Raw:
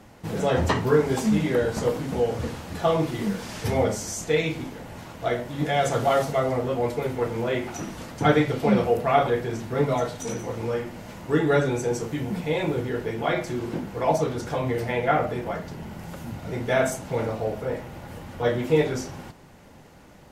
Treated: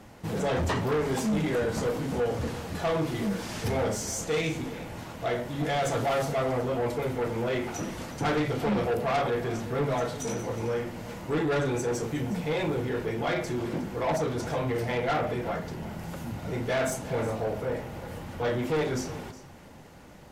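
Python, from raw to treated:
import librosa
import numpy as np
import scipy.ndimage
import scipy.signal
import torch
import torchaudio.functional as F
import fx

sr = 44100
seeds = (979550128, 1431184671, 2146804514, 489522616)

p1 = 10.0 ** (-23.0 / 20.0) * np.tanh(x / 10.0 ** (-23.0 / 20.0))
y = p1 + fx.echo_single(p1, sr, ms=363, db=-16.0, dry=0)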